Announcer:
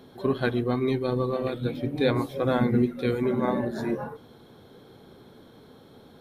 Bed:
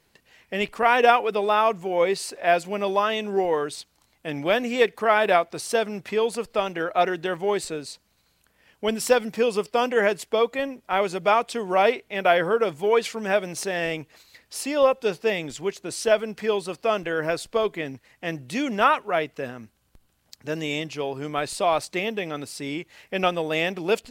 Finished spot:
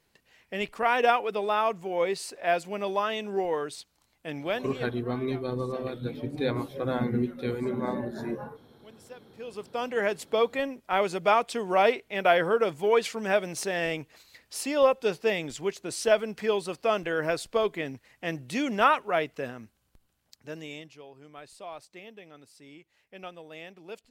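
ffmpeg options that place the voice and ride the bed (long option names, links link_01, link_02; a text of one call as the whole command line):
ffmpeg -i stem1.wav -i stem2.wav -filter_complex "[0:a]adelay=4400,volume=-5dB[link_01];[1:a]volume=19.5dB,afade=type=out:start_time=4.36:duration=0.55:silence=0.0794328,afade=type=in:start_time=9.32:duration=1.14:silence=0.0562341,afade=type=out:start_time=19.39:duration=1.63:silence=0.141254[link_02];[link_01][link_02]amix=inputs=2:normalize=0" out.wav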